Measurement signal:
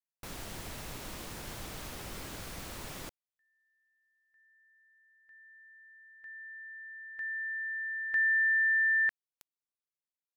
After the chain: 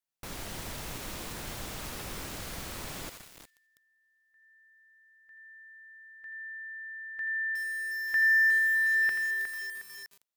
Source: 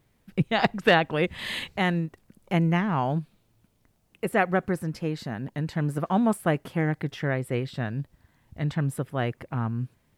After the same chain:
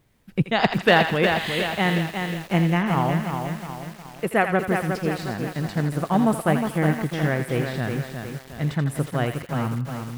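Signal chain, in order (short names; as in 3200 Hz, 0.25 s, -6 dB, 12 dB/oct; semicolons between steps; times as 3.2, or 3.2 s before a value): thinning echo 82 ms, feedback 53%, high-pass 1000 Hz, level -6.5 dB; lo-fi delay 0.361 s, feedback 55%, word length 7-bit, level -5.5 dB; gain +2.5 dB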